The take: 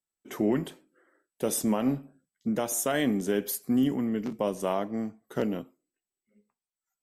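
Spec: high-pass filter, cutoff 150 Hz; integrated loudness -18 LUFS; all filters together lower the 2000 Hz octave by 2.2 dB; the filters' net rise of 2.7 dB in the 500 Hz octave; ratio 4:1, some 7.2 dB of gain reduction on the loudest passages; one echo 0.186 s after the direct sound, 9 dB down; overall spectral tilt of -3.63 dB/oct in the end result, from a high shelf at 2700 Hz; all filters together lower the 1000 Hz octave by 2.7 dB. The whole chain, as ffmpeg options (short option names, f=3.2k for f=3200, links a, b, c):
-af "highpass=150,equalizer=f=500:t=o:g=5,equalizer=f=1k:t=o:g=-7,equalizer=f=2k:t=o:g=-3.5,highshelf=f=2.7k:g=7,acompressor=threshold=-29dB:ratio=4,aecho=1:1:186:0.355,volume=15dB"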